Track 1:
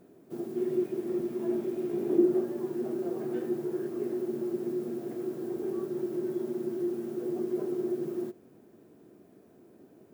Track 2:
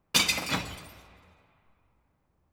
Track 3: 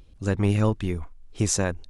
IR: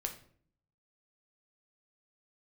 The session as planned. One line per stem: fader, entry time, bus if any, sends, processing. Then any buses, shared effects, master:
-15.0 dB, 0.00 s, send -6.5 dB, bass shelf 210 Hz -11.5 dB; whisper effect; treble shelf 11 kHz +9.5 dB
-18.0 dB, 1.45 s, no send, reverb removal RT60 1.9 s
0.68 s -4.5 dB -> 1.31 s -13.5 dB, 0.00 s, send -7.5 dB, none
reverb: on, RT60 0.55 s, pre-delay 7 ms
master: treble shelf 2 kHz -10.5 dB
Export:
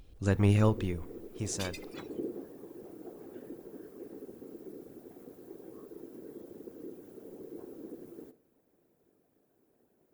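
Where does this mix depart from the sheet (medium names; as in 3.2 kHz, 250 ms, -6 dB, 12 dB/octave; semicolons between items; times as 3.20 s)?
stem 3: send -7.5 dB -> -14.5 dB; master: missing treble shelf 2 kHz -10.5 dB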